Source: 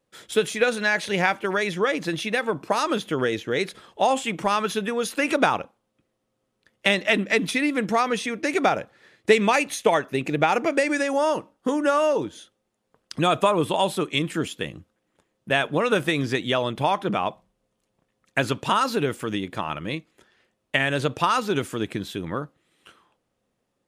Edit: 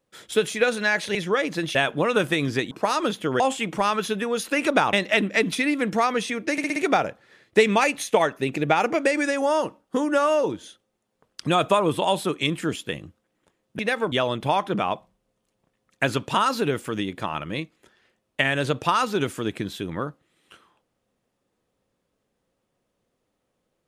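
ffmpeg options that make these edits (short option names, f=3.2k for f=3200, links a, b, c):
-filter_complex "[0:a]asplit=12[a][b][c][d][e][f][g][h][i][j][k][l];[a]atrim=end=1.152[m];[b]atrim=start=1.648:end=2.252[n];[c]atrim=start=15.508:end=16.472[o];[d]atrim=start=2.578:end=3.272[p];[e]atrim=start=4.058:end=5.592[q];[f]atrim=start=6.888:end=8.542[r];[g]atrim=start=8.478:end=8.542[s];[h]atrim=start=8.478:end=8.542[t];[i]atrim=start=8.478:end=8.542[u];[j]atrim=start=8.478:end=15.512[v];[k]atrim=start=2.248:end=2.582[w];[l]atrim=start=16.468[x];[m][n]acrossfade=d=0.004:c1=hsin:c2=hsin[y];[y][o]acrossfade=d=0.004:c1=hsin:c2=hsin[z];[z][p]acrossfade=d=0.004:c1=hsin:c2=hsin[aa];[aa][q]acrossfade=d=0.004:c1=hsin:c2=hsin[ab];[ab][r]acrossfade=d=0.004:c1=hsin:c2=hsin[ac];[ac][s]acrossfade=d=0.004:c1=hsin:c2=hsin[ad];[ad][t]acrossfade=d=0.004:c1=hsin:c2=hsin[ae];[ae][u]acrossfade=d=0.004:c1=hsin:c2=hsin[af];[af][v]acrossfade=d=0.004:c1=hsin:c2=hsin[ag];[ag][w]acrossfade=d=0.004:c1=hsin:c2=hsin[ah];[ah][x]acrossfade=d=0.004:c1=hsin:c2=hsin"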